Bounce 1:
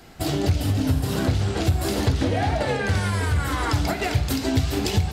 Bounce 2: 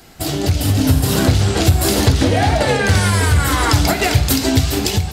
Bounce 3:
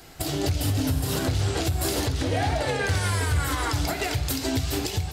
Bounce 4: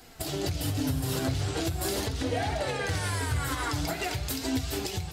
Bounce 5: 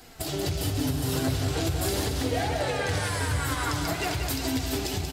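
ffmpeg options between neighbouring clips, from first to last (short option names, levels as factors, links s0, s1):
-af "highshelf=f=4600:g=8,dynaudnorm=f=170:g=7:m=2.24,volume=1.26"
-af "equalizer=f=210:w=7:g=-12.5,alimiter=limit=0.224:level=0:latency=1:release=403,volume=0.708"
-af "flanger=delay=3.9:depth=4.1:regen=49:speed=0.44:shape=triangular"
-filter_complex "[0:a]asplit=2[s0][s1];[s1]asoftclip=type=hard:threshold=0.0299,volume=0.251[s2];[s0][s2]amix=inputs=2:normalize=0,aecho=1:1:184|368|552|736|920|1104|1288:0.447|0.259|0.15|0.0872|0.0505|0.0293|0.017"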